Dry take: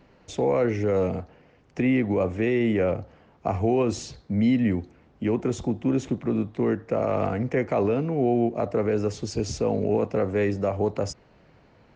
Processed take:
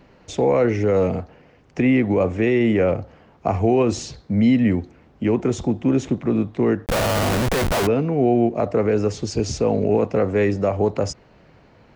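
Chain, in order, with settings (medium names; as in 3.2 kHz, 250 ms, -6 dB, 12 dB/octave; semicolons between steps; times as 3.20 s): 6.86–7.87 s: Schmitt trigger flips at -35 dBFS; trim +5 dB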